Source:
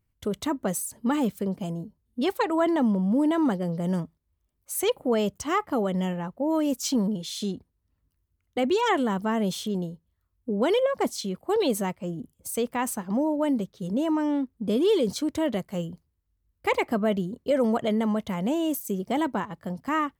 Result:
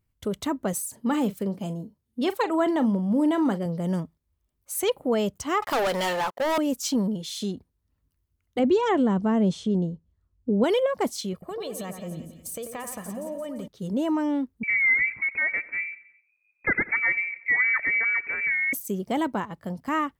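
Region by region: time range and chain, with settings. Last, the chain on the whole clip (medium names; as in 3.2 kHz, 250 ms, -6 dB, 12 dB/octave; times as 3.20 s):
0.73–3.66 s: high-pass 91 Hz + doubling 40 ms -14 dB
5.62–6.58 s: high-pass 720 Hz + waveshaping leveller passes 5
8.59–10.64 s: low-pass 8.3 kHz 24 dB/octave + tilt shelf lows +6 dB, about 700 Hz
11.33–13.68 s: comb 1.7 ms, depth 53% + compression 12:1, threshold -31 dBFS + two-band feedback delay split 2.2 kHz, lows 90 ms, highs 172 ms, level -7.5 dB
14.63–18.73 s: frequency inversion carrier 2.5 kHz + feedback delay 90 ms, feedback 54%, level -19.5 dB
whole clip: none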